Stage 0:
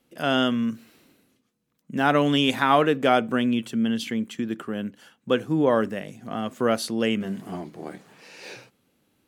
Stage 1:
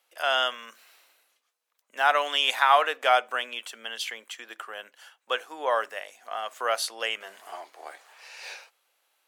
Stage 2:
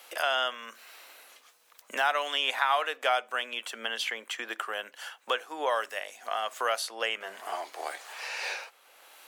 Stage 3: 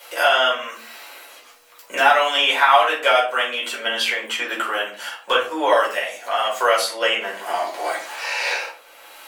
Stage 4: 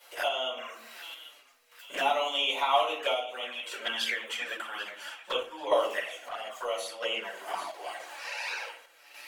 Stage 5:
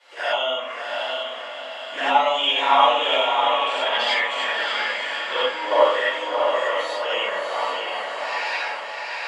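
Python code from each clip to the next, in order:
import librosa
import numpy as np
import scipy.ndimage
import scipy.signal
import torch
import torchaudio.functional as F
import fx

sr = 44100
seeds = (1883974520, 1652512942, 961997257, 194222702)

y1 = scipy.signal.sosfilt(scipy.signal.butter(4, 670.0, 'highpass', fs=sr, output='sos'), x)
y1 = y1 * 10.0 ** (1.5 / 20.0)
y2 = fx.band_squash(y1, sr, depth_pct=70)
y2 = y2 * 10.0 ** (-2.0 / 20.0)
y3 = fx.room_shoebox(y2, sr, seeds[0], volume_m3=280.0, walls='furnished', distance_m=4.8)
y3 = y3 * 10.0 ** (3.0 / 20.0)
y4 = fx.env_flanger(y3, sr, rest_ms=8.6, full_db=-16.0)
y4 = fx.echo_split(y4, sr, split_hz=1700.0, low_ms=83, high_ms=789, feedback_pct=52, wet_db=-14)
y4 = fx.tremolo_random(y4, sr, seeds[1], hz=3.5, depth_pct=55)
y4 = y4 * 10.0 ** (-6.0 / 20.0)
y5 = fx.cabinet(y4, sr, low_hz=130.0, low_slope=24, high_hz=7000.0, hz=(1000.0, 1800.0, 6000.0), db=(3, 5, -7))
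y5 = fx.echo_diffused(y5, sr, ms=666, feedback_pct=48, wet_db=-3.5)
y5 = fx.rev_gated(y5, sr, seeds[2], gate_ms=110, shape='rising', drr_db=-6.5)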